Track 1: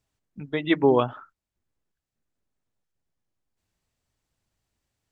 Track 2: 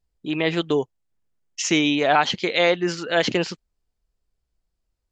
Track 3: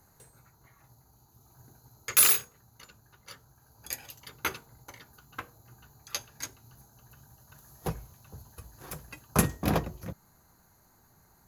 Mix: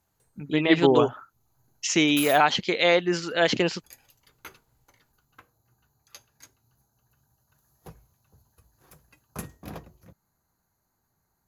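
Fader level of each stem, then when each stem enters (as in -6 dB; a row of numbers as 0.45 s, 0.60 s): -0.5 dB, -1.5 dB, -13.0 dB; 0.00 s, 0.25 s, 0.00 s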